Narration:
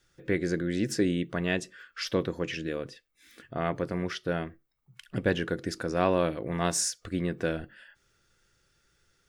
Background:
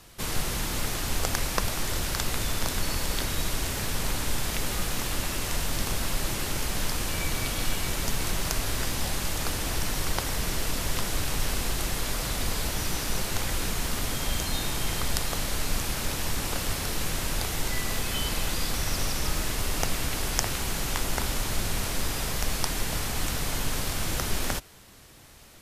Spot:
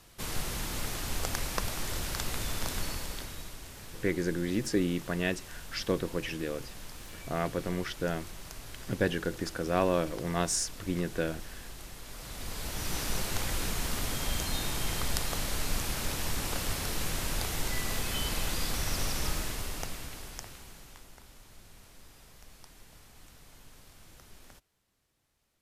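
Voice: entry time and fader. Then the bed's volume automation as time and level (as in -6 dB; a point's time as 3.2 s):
3.75 s, -2.0 dB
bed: 2.81 s -5.5 dB
3.58 s -16.5 dB
12.03 s -16.5 dB
12.98 s -3.5 dB
19.27 s -3.5 dB
21.18 s -25.5 dB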